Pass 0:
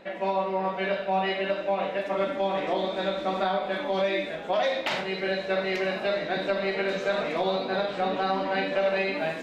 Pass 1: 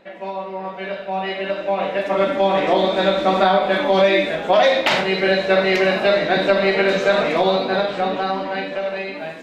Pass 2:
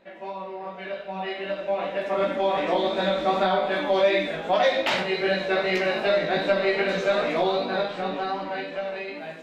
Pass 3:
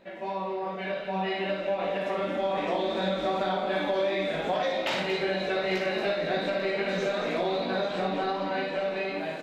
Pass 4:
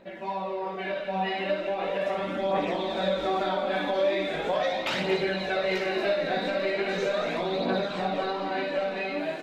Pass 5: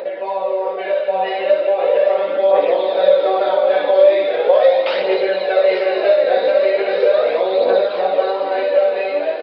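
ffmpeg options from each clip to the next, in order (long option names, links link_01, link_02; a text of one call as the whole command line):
ffmpeg -i in.wav -af "dynaudnorm=framelen=290:gausssize=13:maxgain=14.5dB,volume=-1.5dB" out.wav
ffmpeg -i in.wav -af "flanger=delay=16.5:depth=2.2:speed=2.6,volume=-3.5dB" out.wav
ffmpeg -i in.wav -filter_complex "[0:a]equalizer=frequency=1400:width=0.36:gain=-3,acompressor=threshold=-30dB:ratio=6,asplit=2[link_01][link_02];[link_02]aecho=0:1:58|229|843:0.473|0.335|0.224[link_03];[link_01][link_03]amix=inputs=2:normalize=0,volume=3.5dB" out.wav
ffmpeg -i in.wav -af "aphaser=in_gain=1:out_gain=1:delay=4.2:decay=0.39:speed=0.39:type=triangular" out.wav
ffmpeg -i in.wav -af "aresample=11025,aresample=44100,acompressor=mode=upward:threshold=-32dB:ratio=2.5,highpass=frequency=500:width_type=q:width=6,volume=4.5dB" out.wav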